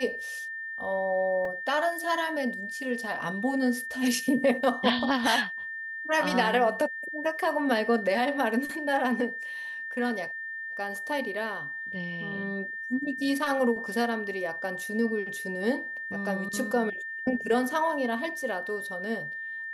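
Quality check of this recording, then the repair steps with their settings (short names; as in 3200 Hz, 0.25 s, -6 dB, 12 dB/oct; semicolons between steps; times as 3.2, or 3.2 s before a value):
tone 1800 Hz -34 dBFS
1.45 gap 2.6 ms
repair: notch 1800 Hz, Q 30; interpolate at 1.45, 2.6 ms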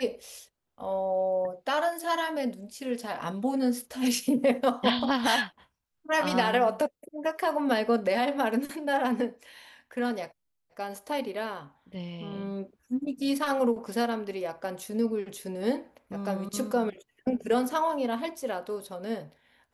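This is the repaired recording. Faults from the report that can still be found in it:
none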